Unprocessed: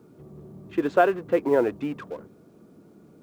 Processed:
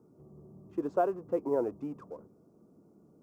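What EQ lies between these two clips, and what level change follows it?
high-order bell 2.5 kHz -14.5 dB; treble shelf 4.2 kHz -5.5 dB; -8.5 dB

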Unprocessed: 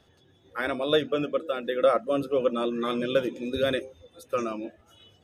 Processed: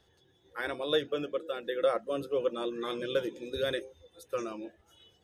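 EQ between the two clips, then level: graphic EQ with 31 bands 100 Hz -9 dB, 160 Hz -6 dB, 250 Hz -12 dB, 630 Hz -7 dB, 1.25 kHz -6 dB, 2.5 kHz -5 dB; -3.0 dB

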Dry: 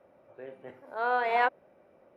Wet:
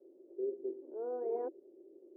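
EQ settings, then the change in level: Butterworth band-pass 360 Hz, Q 4.2; distance through air 410 m; +14.0 dB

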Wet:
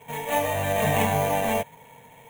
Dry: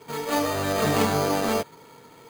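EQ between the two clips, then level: static phaser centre 1.3 kHz, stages 6; +3.5 dB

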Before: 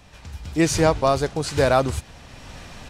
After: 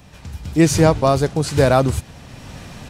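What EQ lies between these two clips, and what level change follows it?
tone controls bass -4 dB, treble -1 dB; peaking EQ 140 Hz +11 dB 2.4 oct; treble shelf 10 kHz +9.5 dB; +1.0 dB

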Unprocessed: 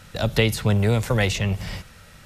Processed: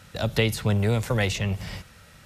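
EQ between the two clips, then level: high-pass 41 Hz; -3.0 dB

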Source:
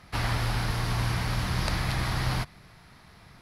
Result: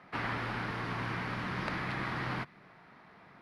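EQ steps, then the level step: low-pass 9.4 kHz 12 dB/octave; dynamic bell 700 Hz, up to -6 dB, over -49 dBFS, Q 1.3; three-band isolator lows -23 dB, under 170 Hz, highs -19 dB, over 2.6 kHz; 0.0 dB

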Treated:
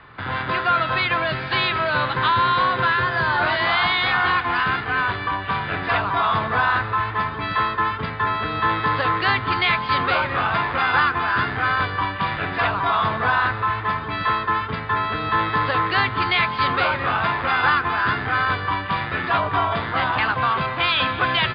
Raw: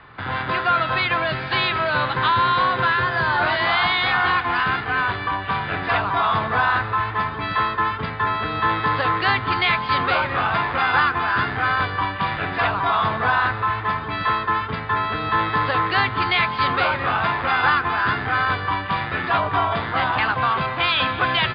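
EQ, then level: peaking EQ 780 Hz -2.5 dB 0.24 oct; 0.0 dB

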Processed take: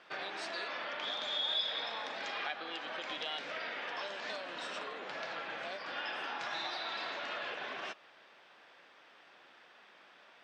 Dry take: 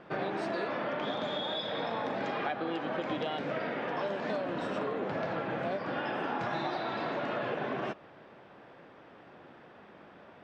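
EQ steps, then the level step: band-pass filter 5.7 kHz, Q 0.74; +7.0 dB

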